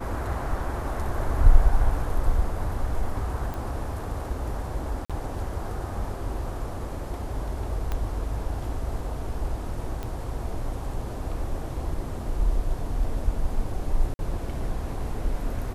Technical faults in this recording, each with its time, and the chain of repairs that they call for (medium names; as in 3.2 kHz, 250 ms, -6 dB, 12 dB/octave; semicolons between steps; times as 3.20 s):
3.54 s: pop
5.05–5.10 s: dropout 46 ms
7.92 s: pop -16 dBFS
10.03 s: pop -20 dBFS
14.14–14.19 s: dropout 51 ms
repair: de-click; interpolate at 5.05 s, 46 ms; interpolate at 14.14 s, 51 ms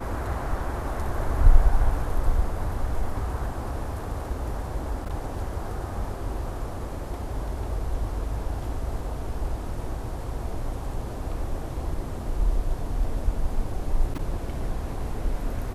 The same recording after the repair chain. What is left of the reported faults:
7.92 s: pop